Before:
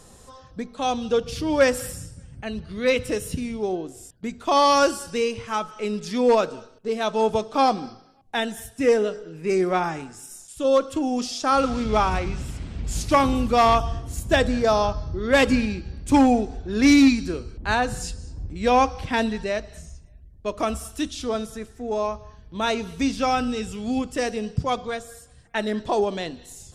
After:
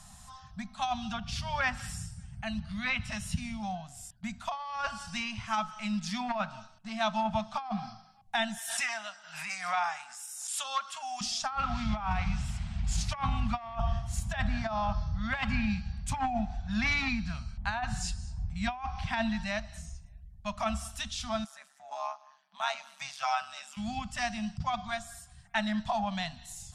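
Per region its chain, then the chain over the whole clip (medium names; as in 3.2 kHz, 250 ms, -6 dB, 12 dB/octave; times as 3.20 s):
8.58–11.21 s: high-pass 810 Hz + swell ahead of each attack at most 51 dB/s
21.44–23.77 s: rippled Chebyshev high-pass 310 Hz, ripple 3 dB + AM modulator 140 Hz, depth 60%
whole clip: low-pass that closes with the level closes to 2.7 kHz, closed at -16.5 dBFS; elliptic band-stop 210–700 Hz, stop band 40 dB; compressor with a negative ratio -25 dBFS, ratio -0.5; trim -3.5 dB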